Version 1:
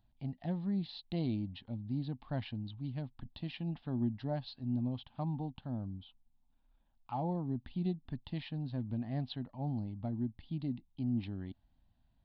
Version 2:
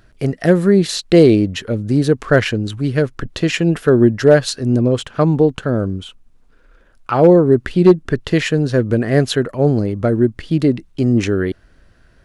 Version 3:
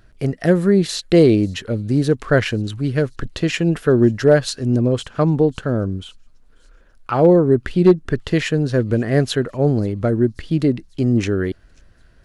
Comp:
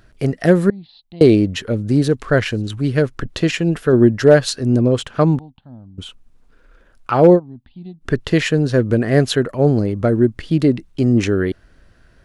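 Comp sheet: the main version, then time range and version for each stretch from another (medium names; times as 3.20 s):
2
0.70–1.21 s: from 1
2.08–2.70 s: from 3
3.51–3.93 s: from 3
5.39–5.98 s: from 1
7.37–8.03 s: from 1, crossfade 0.06 s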